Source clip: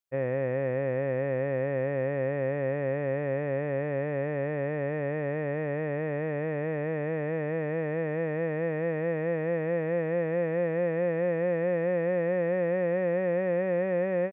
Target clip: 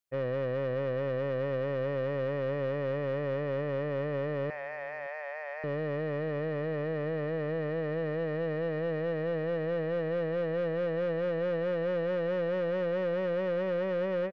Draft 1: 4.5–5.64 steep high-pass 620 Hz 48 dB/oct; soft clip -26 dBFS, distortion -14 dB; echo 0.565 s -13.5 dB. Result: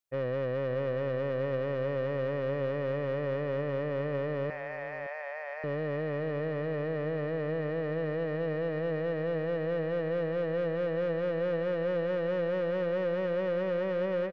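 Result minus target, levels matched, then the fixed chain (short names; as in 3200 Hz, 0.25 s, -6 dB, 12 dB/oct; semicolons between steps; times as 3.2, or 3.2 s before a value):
echo-to-direct +9.5 dB
4.5–5.64 steep high-pass 620 Hz 48 dB/oct; soft clip -26 dBFS, distortion -14 dB; echo 0.565 s -23 dB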